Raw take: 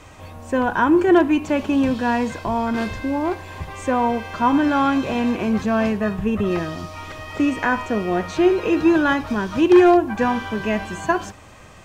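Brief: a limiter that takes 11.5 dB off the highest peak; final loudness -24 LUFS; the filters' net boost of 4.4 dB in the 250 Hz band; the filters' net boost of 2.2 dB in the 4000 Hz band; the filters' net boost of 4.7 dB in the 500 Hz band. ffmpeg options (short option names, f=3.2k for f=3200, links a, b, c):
-af "equalizer=f=250:t=o:g=3.5,equalizer=f=500:t=o:g=5.5,equalizer=f=4k:t=o:g=3,volume=-2.5dB,alimiter=limit=-15dB:level=0:latency=1"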